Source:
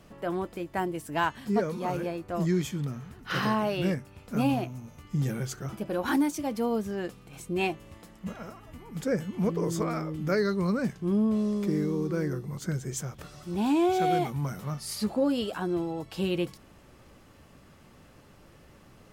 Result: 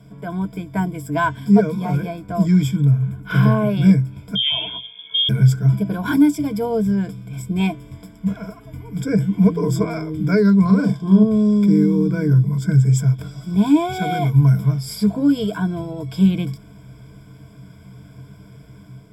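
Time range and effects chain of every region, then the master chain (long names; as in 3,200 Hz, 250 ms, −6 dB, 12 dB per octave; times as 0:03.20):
0:02.76–0:03.77: parametric band 4,800 Hz −10.5 dB 0.64 octaves + notch filter 1,900 Hz, Q 13
0:04.35–0:05.29: all-pass dispersion highs, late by 146 ms, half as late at 1,100 Hz + voice inversion scrambler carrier 3,400 Hz
0:10.65–0:11.23: flat-topped bell 1,900 Hz −10 dB 1 octave + mid-hump overdrive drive 12 dB, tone 3,500 Hz, clips at −18 dBFS + double-tracking delay 42 ms −3 dB
whole clip: parametric band 140 Hz +15 dB 1.2 octaves; automatic gain control gain up to 3.5 dB; EQ curve with evenly spaced ripples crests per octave 1.7, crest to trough 18 dB; level −2.5 dB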